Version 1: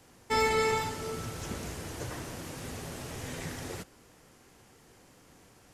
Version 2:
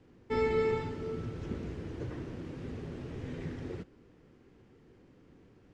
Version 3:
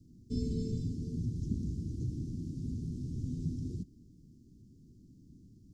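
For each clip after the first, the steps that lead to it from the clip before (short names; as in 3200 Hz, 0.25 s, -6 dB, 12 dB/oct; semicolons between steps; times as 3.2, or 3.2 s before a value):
LPF 3100 Hz 12 dB/oct; resonant low shelf 520 Hz +8 dB, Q 1.5; gain -7.5 dB
inverse Chebyshev band-stop 840–1700 Hz, stop band 80 dB; gain +5 dB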